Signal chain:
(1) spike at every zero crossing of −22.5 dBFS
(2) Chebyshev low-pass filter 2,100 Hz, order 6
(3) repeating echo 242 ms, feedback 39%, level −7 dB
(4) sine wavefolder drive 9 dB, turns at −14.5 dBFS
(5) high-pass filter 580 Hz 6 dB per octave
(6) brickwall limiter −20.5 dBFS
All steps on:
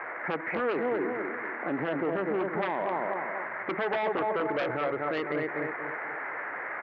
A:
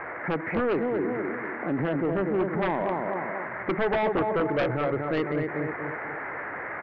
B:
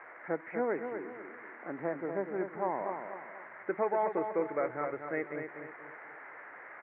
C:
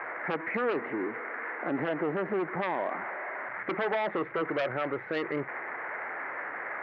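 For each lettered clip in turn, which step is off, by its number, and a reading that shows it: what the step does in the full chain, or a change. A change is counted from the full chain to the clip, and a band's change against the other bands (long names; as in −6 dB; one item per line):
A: 5, 125 Hz band +9.0 dB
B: 4, distortion level −5 dB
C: 3, change in crest factor +1.5 dB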